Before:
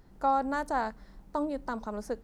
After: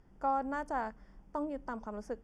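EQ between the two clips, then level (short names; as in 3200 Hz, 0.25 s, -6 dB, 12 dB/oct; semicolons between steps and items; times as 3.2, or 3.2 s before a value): Butterworth band-stop 4000 Hz, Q 3.8; air absorption 54 m; -5.0 dB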